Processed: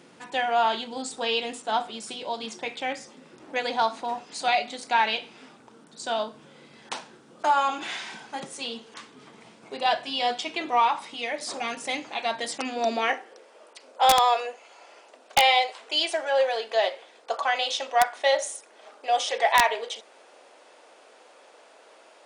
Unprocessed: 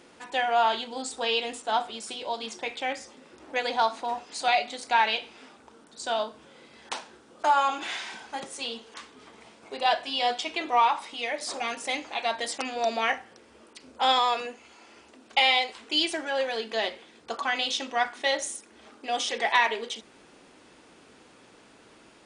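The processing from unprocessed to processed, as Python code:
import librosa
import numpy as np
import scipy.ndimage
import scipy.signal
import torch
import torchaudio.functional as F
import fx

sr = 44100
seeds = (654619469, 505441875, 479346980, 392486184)

y = fx.filter_sweep_highpass(x, sr, from_hz=140.0, to_hz=590.0, start_s=12.51, end_s=13.51, q=2.5)
y = (np.mod(10.0 ** (8.5 / 20.0) * y + 1.0, 2.0) - 1.0) / 10.0 ** (8.5 / 20.0)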